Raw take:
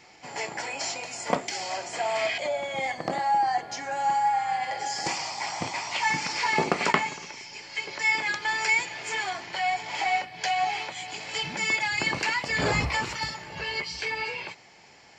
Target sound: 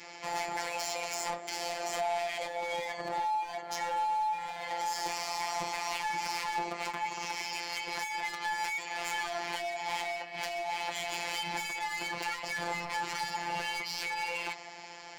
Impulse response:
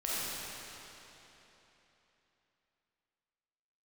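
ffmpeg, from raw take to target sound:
-af "acompressor=threshold=-35dB:ratio=20,bass=f=250:g=-8,treble=f=4k:g=-1,asoftclip=type=hard:threshold=-39.5dB,afftfilt=real='hypot(re,im)*cos(PI*b)':imag='0':win_size=1024:overlap=0.75,adynamicequalizer=threshold=0.00112:dfrequency=810:dqfactor=2:tfrequency=810:tqfactor=2:attack=5:release=100:ratio=0.375:range=2.5:mode=boostabove:tftype=bell,volume=9dB"

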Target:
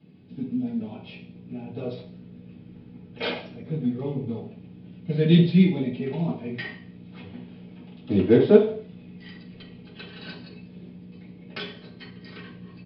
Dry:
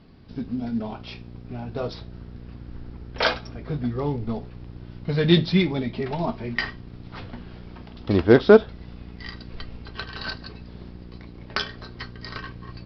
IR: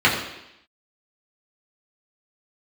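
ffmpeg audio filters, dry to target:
-filter_complex "[0:a]firequalizer=gain_entry='entry(200,0);entry(1300,-13);entry(2500,-2);entry(6300,-22)':delay=0.05:min_phase=1[a];[1:a]atrim=start_sample=2205,asetrate=74970,aresample=44100[b];[a][b]afir=irnorm=-1:irlink=0,volume=-17dB"

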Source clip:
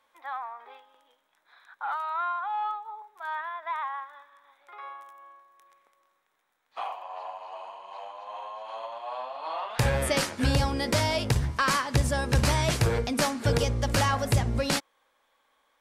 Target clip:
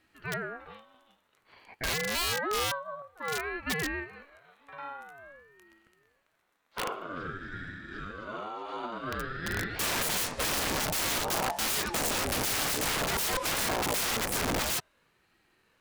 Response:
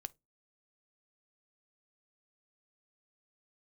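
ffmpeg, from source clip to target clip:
-filter_complex "[0:a]asettb=1/sr,asplit=3[a][b][c];[a]atrim=end=12.854[d];[b]atrim=start=12.85:end=13.86,asetpts=PTS-STARTPTS,afade=t=in:d=0.004:c=qsin,afade=t=out:st=1.006:d=0.004:c=qsin,aecho=1:1:4:0.59,atrim=end_sample=44541[e];[c]atrim=start=13.856[f];[d][e]acrossfade=d=0.004:c1=hsin:c2=qsin[g];[g][f]acrossfade=d=0.004:c1=qsin:c2=hsin,aeval=exprs='(mod(18.8*val(0)+1,2)-1)/18.8':c=same,aeval=exprs='val(0)*sin(2*PI*520*n/s+520*0.5/0.52*sin(2*PI*0.52*n/s))':c=same,volume=3.5dB"

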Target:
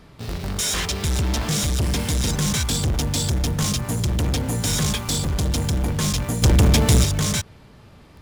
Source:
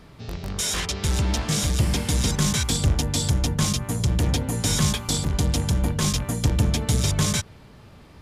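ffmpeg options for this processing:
-filter_complex "[0:a]asplit=2[a][b];[b]acrusher=bits=5:mix=0:aa=0.000001,volume=-3dB[c];[a][c]amix=inputs=2:normalize=0,asoftclip=type=tanh:threshold=-17.5dB,asettb=1/sr,asplit=3[d][e][f];[d]atrim=end=6.424[g];[e]atrim=start=6.42:end=7.04,asetpts=PTS-STARTPTS,afade=t=in:d=0.004:c=qsin,afade=t=out:st=0.616:d=0.004:c=qsin,acontrast=87[h];[f]atrim=start=7.036[i];[g][h]acrossfade=d=0.004:c1=hsin:c2=qsin[j];[j][i]acrossfade=d=0.004:c1=qsin:c2=hsin"

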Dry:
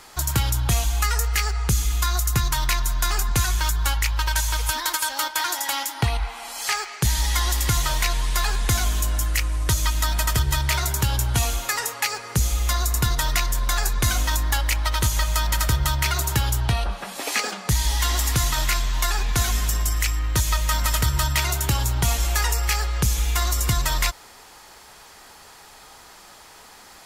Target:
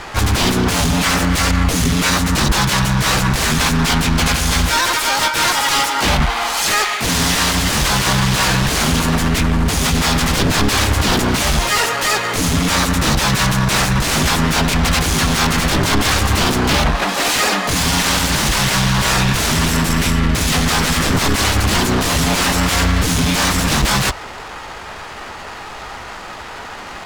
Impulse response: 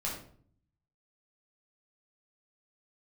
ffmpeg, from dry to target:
-filter_complex "[0:a]aeval=exprs='0.237*sin(PI/2*4.47*val(0)/0.237)':c=same,adynamicsmooth=sensitivity=2:basefreq=1.9k,asplit=2[a][b];[b]asetrate=66075,aresample=44100,atempo=0.66742,volume=-3dB[c];[a][c]amix=inputs=2:normalize=0"

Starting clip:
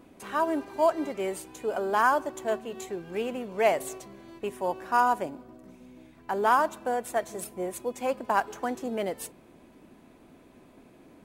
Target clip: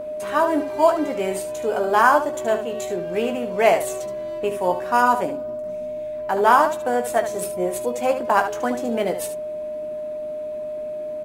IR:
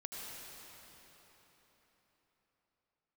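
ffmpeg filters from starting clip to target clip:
-af "aeval=exprs='val(0)+0.02*sin(2*PI*610*n/s)':c=same,aecho=1:1:17|74:0.398|0.335,volume=6.5dB"

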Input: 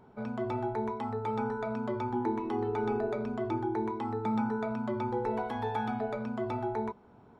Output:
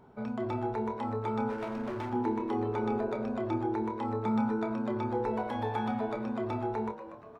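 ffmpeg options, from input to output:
-filter_complex "[0:a]asettb=1/sr,asplit=3[a][b][c];[a]atrim=end=1.504[d];[b]atrim=start=1.5:end=2.1,asetpts=PTS-STARTPTS,afade=t=in:d=0.004:c=qsin,afade=t=out:st=0.596:d=0.004:c=qsin,asoftclip=type=hard:threshold=-33dB[e];[c]atrim=start=2.096[f];[d][e]acrossfade=d=0.004:c1=hsin:c2=qsin[g];[g][f]acrossfade=d=0.004:c1=qsin:c2=hsin,asplit=2[h][i];[i]adelay=28,volume=-10dB[j];[h][j]amix=inputs=2:normalize=0,asplit=5[k][l][m][n][o];[l]adelay=239,afreqshift=110,volume=-12.5dB[p];[m]adelay=478,afreqshift=220,volume=-19.6dB[q];[n]adelay=717,afreqshift=330,volume=-26.8dB[r];[o]adelay=956,afreqshift=440,volume=-33.9dB[s];[k][p][q][r][s]amix=inputs=5:normalize=0"

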